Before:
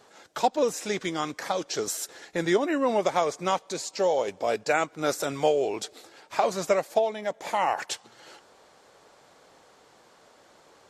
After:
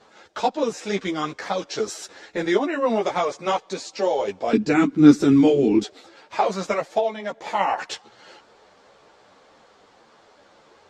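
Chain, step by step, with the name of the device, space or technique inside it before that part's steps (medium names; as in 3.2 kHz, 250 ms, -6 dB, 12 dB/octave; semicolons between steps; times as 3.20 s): string-machine ensemble chorus (three-phase chorus; low-pass 5.3 kHz 12 dB/octave); 4.53–5.84 s: resonant low shelf 410 Hz +13 dB, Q 3; trim +6 dB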